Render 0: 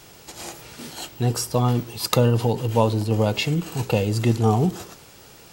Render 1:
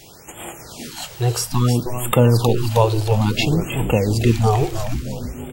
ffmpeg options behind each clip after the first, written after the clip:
-filter_complex "[0:a]asplit=8[a][b][c][d][e][f][g][h];[b]adelay=314,afreqshift=-120,volume=-8.5dB[i];[c]adelay=628,afreqshift=-240,volume=-13.4dB[j];[d]adelay=942,afreqshift=-360,volume=-18.3dB[k];[e]adelay=1256,afreqshift=-480,volume=-23.1dB[l];[f]adelay=1570,afreqshift=-600,volume=-28dB[m];[g]adelay=1884,afreqshift=-720,volume=-32.9dB[n];[h]adelay=2198,afreqshift=-840,volume=-37.8dB[o];[a][i][j][k][l][m][n][o]amix=inputs=8:normalize=0,afftfilt=real='re*(1-between(b*sr/1024,210*pow(5200/210,0.5+0.5*sin(2*PI*0.59*pts/sr))/1.41,210*pow(5200/210,0.5+0.5*sin(2*PI*0.59*pts/sr))*1.41))':imag='im*(1-between(b*sr/1024,210*pow(5200/210,0.5+0.5*sin(2*PI*0.59*pts/sr))/1.41,210*pow(5200/210,0.5+0.5*sin(2*PI*0.59*pts/sr))*1.41))':win_size=1024:overlap=0.75,volume=3.5dB"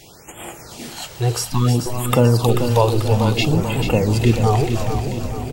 -filter_complex "[0:a]highshelf=f=11k:g=-3.5,asplit=2[a][b];[b]aecho=0:1:438|876|1314|1752|2190|2628:0.398|0.207|0.108|0.056|0.0291|0.0151[c];[a][c]amix=inputs=2:normalize=0"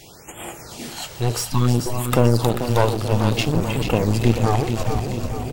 -af "aeval=exprs='clip(val(0),-1,0.0596)':c=same"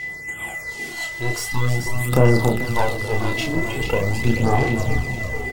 -filter_complex "[0:a]aeval=exprs='val(0)+0.0355*sin(2*PI*2000*n/s)':c=same,asplit=2[a][b];[b]adelay=31,volume=-3.5dB[c];[a][c]amix=inputs=2:normalize=0,aphaser=in_gain=1:out_gain=1:delay=3.1:decay=0.49:speed=0.43:type=sinusoidal,volume=-5dB"

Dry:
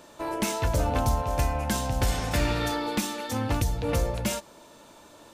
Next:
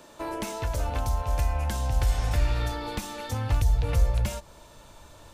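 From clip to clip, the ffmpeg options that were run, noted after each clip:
-filter_complex "[0:a]acrossover=split=480|1100[a][b][c];[a]acompressor=threshold=-33dB:ratio=4[d];[b]acompressor=threshold=-37dB:ratio=4[e];[c]acompressor=threshold=-38dB:ratio=4[f];[d][e][f]amix=inputs=3:normalize=0,asubboost=boost=10.5:cutoff=84"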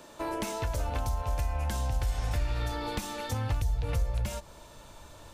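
-af "acompressor=threshold=-28dB:ratio=2.5"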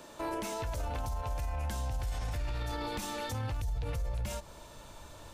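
-af "alimiter=level_in=4dB:limit=-24dB:level=0:latency=1:release=24,volume=-4dB"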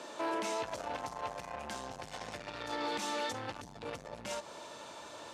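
-af "asoftclip=type=tanh:threshold=-35dB,highpass=290,lowpass=7.1k,volume=5.5dB"

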